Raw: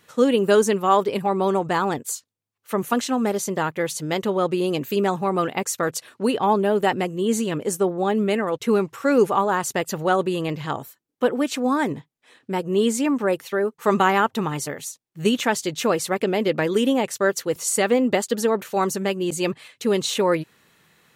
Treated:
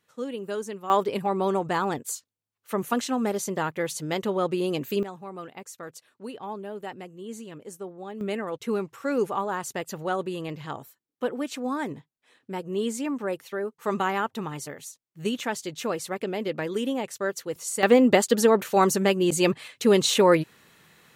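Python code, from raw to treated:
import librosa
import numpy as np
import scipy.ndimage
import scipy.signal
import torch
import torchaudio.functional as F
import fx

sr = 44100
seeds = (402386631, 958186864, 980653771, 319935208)

y = fx.gain(x, sr, db=fx.steps((0.0, -15.0), (0.9, -4.0), (5.03, -16.5), (8.21, -8.0), (17.83, 2.0)))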